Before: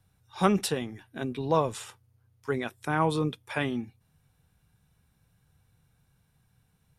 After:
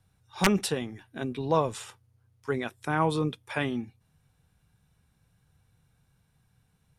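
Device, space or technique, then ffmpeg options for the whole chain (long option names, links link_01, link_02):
overflowing digital effects unit: -af "aeval=exprs='(mod(3.35*val(0)+1,2)-1)/3.35':channel_layout=same,lowpass=12000"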